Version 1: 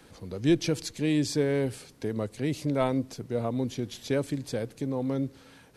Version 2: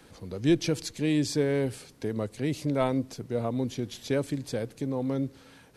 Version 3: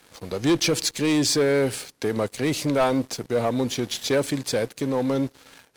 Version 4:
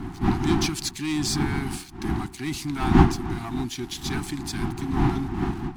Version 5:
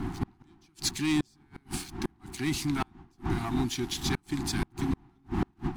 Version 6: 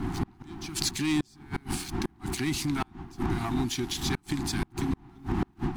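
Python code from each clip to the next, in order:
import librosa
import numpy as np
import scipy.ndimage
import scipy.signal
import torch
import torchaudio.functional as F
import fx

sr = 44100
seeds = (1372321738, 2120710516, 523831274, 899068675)

y1 = x
y2 = fx.low_shelf(y1, sr, hz=380.0, db=-11.5)
y2 = fx.leveller(y2, sr, passes=3)
y2 = y2 * librosa.db_to_amplitude(2.0)
y3 = fx.dmg_wind(y2, sr, seeds[0], corner_hz=420.0, level_db=-20.0)
y3 = scipy.signal.sosfilt(scipy.signal.ellip(3, 1.0, 40, [370.0, 750.0], 'bandstop', fs=sr, output='sos'), y3)
y3 = y3 * librosa.db_to_amplitude(-4.5)
y4 = fx.gate_flip(y3, sr, shuts_db=-17.0, range_db=-37)
y5 = fx.recorder_agc(y4, sr, target_db=-22.5, rise_db_per_s=56.0, max_gain_db=30)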